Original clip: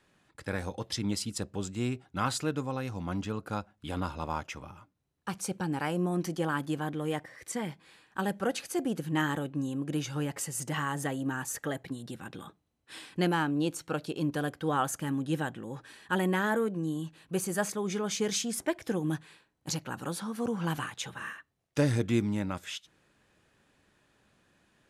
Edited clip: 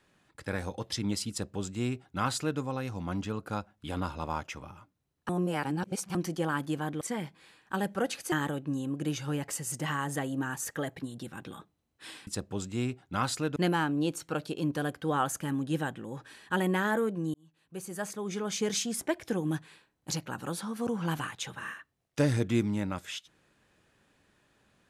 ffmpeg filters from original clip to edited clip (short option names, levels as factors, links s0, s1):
-filter_complex "[0:a]asplit=8[s0][s1][s2][s3][s4][s5][s6][s7];[s0]atrim=end=5.292[s8];[s1]atrim=start=5.288:end=6.152,asetpts=PTS-STARTPTS,areverse[s9];[s2]atrim=start=6.148:end=7.012[s10];[s3]atrim=start=7.458:end=8.772[s11];[s4]atrim=start=9.198:end=13.152[s12];[s5]atrim=start=1.298:end=2.592[s13];[s6]atrim=start=13.148:end=16.93,asetpts=PTS-STARTPTS,afade=t=out:st=3.778:d=0.004:c=hsin[s14];[s7]atrim=start=16.93,asetpts=PTS-STARTPTS,afade=t=in:d=1.31[s15];[s8][s9]acrossfade=d=0.004:c1=hsin:c2=hsin[s16];[s16][s10]acrossfade=d=0.004:c1=hsin:c2=hsin[s17];[s17][s11]acrossfade=d=0.004:c1=hsin:c2=hsin[s18];[s18][s12]acrossfade=d=0.004:c1=hsin:c2=hsin[s19];[s19][s13]acrossfade=d=0.004:c1=hsin:c2=hsin[s20];[s14][s15]concat=n=2:v=0:a=1[s21];[s20][s21]acrossfade=d=0.004:c1=hsin:c2=hsin"